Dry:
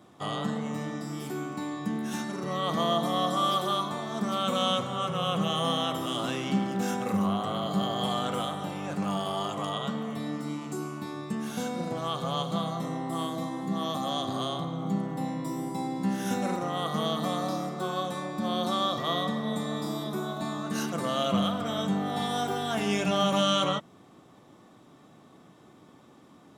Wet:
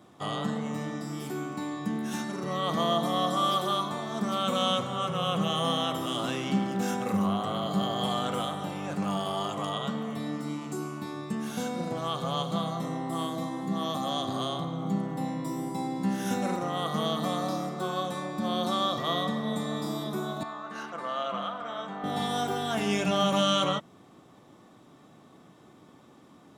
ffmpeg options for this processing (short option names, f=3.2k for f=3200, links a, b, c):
-filter_complex "[0:a]asettb=1/sr,asplit=3[a][b][c];[a]atrim=end=20.434[d];[b]atrim=start=20.43:end=22.04,asetpts=PTS-STARTPTS,afade=t=in:d=0.004:c=qsin,afade=t=out:st=1.606:d=0.004:c=qsin,bandpass=f=1.2k:t=q:w=0.97[e];[c]atrim=start=22.036[f];[d][e]acrossfade=d=0.004:c1=hsin:c2=qsin[g];[g][f]acrossfade=d=0.004:c1=qsin:c2=hsin"